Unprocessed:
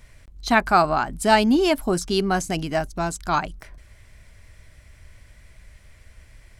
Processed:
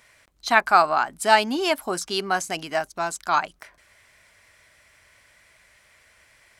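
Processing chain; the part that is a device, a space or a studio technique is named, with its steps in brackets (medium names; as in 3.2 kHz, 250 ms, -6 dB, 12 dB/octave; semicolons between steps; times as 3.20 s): filter by subtraction (in parallel: low-pass 1.1 kHz 12 dB/octave + polarity flip)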